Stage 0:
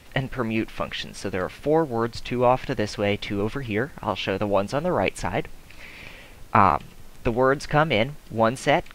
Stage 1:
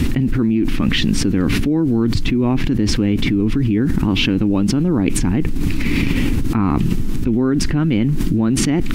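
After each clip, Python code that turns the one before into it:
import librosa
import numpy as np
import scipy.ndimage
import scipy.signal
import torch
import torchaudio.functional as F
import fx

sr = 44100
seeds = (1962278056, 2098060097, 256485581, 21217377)

y = fx.low_shelf_res(x, sr, hz=410.0, db=12.5, q=3.0)
y = fx.env_flatten(y, sr, amount_pct=100)
y = F.gain(torch.from_numpy(y), -10.5).numpy()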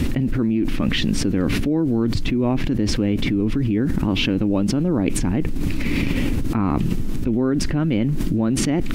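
y = fx.peak_eq(x, sr, hz=580.0, db=7.5, octaves=0.6)
y = F.gain(torch.from_numpy(y), -4.0).numpy()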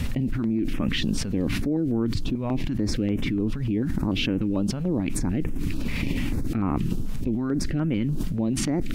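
y = fx.filter_held_notch(x, sr, hz=6.8, low_hz=320.0, high_hz=4300.0)
y = F.gain(torch.from_numpy(y), -4.5).numpy()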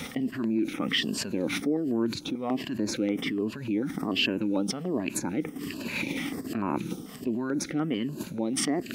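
y = fx.spec_ripple(x, sr, per_octave=1.4, drift_hz=-1.3, depth_db=10)
y = scipy.signal.sosfilt(scipy.signal.butter(2, 290.0, 'highpass', fs=sr, output='sos'), y)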